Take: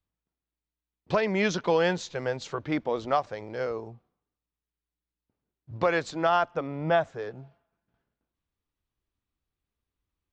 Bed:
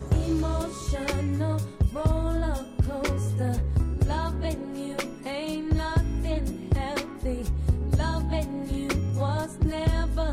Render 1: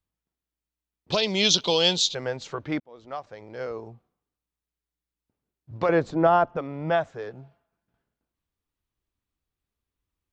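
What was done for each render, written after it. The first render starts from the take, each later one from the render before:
0:01.12–0:02.15: high shelf with overshoot 2,500 Hz +12 dB, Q 3
0:02.80–0:03.89: fade in
0:05.89–0:06.57: tilt shelving filter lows +9.5 dB, about 1,400 Hz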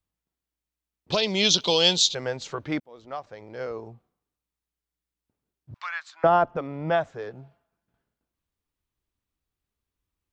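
0:01.60–0:03.02: high-shelf EQ 4,200 Hz +5 dB
0:05.74–0:06.24: inverse Chebyshev high-pass filter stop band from 480 Hz, stop band 50 dB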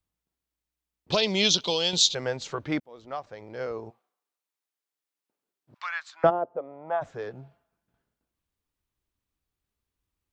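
0:01.32–0:01.93: fade out, to −8.5 dB
0:03.89–0:05.77: high-pass filter 660 Hz → 310 Hz
0:06.29–0:07.01: resonant band-pass 380 Hz → 980 Hz, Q 2.3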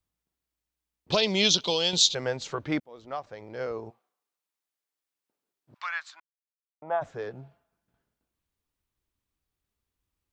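0:06.20–0:06.82: silence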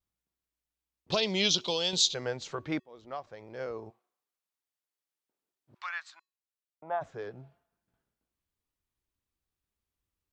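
tuned comb filter 370 Hz, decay 0.37 s, harmonics odd, mix 40%
pitch vibrato 1.2 Hz 39 cents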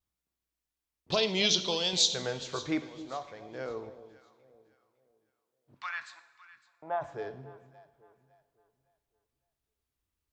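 delay that swaps between a low-pass and a high-pass 279 ms, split 820 Hz, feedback 55%, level −13.5 dB
coupled-rooms reverb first 0.79 s, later 3.1 s, from −18 dB, DRR 10 dB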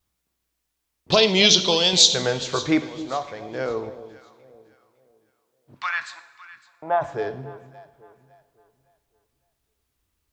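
level +11 dB
brickwall limiter −2 dBFS, peak gain reduction 1 dB

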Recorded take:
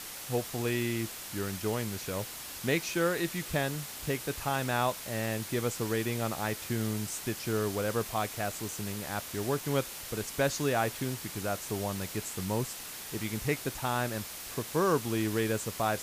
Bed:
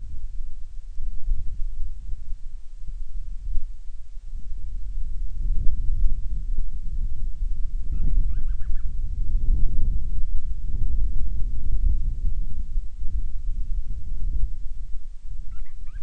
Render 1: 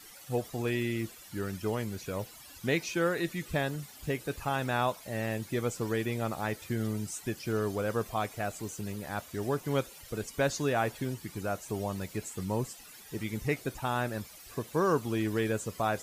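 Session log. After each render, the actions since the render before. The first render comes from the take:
broadband denoise 14 dB, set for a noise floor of −43 dBFS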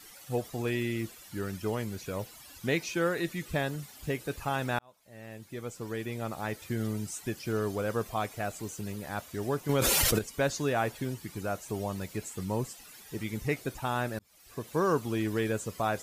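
0:04.79–0:06.80: fade in
0:09.69–0:10.19: envelope flattener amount 100%
0:14.19–0:14.73: fade in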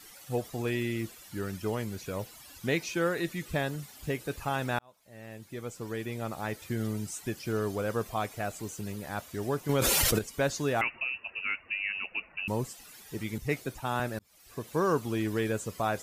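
0:10.81–0:12.48: voice inversion scrambler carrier 2,800 Hz
0:13.38–0:14.00: multiband upward and downward expander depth 40%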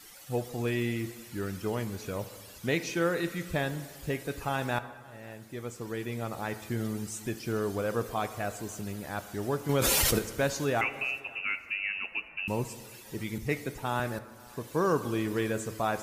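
feedback echo with a high-pass in the loop 545 ms, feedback 26%, level −24 dB
dense smooth reverb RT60 1.6 s, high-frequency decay 0.6×, DRR 11 dB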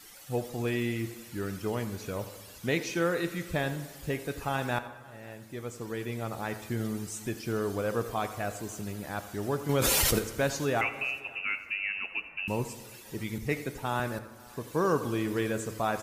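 slap from a distant wall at 15 metres, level −15 dB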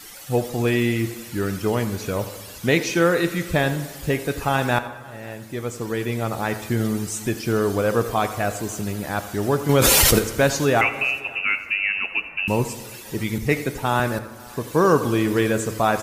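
level +10 dB

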